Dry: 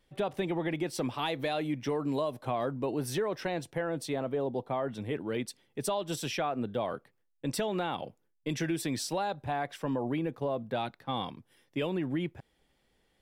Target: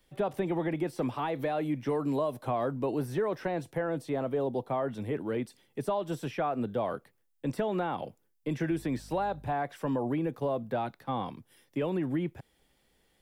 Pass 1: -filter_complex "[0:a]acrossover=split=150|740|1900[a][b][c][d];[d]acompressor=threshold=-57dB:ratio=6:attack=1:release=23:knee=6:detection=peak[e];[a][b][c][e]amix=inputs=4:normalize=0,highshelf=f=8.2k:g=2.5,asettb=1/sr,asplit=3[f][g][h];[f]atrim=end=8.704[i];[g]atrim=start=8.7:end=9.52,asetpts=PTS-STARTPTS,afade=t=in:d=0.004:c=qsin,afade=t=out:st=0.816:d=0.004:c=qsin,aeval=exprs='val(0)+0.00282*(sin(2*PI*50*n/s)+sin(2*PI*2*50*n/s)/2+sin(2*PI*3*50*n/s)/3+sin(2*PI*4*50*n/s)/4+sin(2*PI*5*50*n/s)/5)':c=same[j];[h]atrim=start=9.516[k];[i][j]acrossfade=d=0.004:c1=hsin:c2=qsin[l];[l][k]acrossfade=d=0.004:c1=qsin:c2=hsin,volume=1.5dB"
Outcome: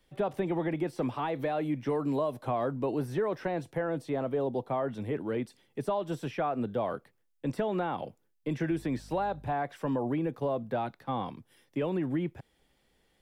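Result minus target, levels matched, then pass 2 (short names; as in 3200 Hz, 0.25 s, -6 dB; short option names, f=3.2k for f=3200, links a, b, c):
8000 Hz band -3.0 dB
-filter_complex "[0:a]acrossover=split=150|740|1900[a][b][c][d];[d]acompressor=threshold=-57dB:ratio=6:attack=1:release=23:knee=6:detection=peak[e];[a][b][c][e]amix=inputs=4:normalize=0,highshelf=f=8.2k:g=9,asettb=1/sr,asplit=3[f][g][h];[f]atrim=end=8.704[i];[g]atrim=start=8.7:end=9.52,asetpts=PTS-STARTPTS,afade=t=in:d=0.004:c=qsin,afade=t=out:st=0.816:d=0.004:c=qsin,aeval=exprs='val(0)+0.00282*(sin(2*PI*50*n/s)+sin(2*PI*2*50*n/s)/2+sin(2*PI*3*50*n/s)/3+sin(2*PI*4*50*n/s)/4+sin(2*PI*5*50*n/s)/5)':c=same[j];[h]atrim=start=9.516[k];[i][j]acrossfade=d=0.004:c1=hsin:c2=qsin[l];[l][k]acrossfade=d=0.004:c1=qsin:c2=hsin,volume=1.5dB"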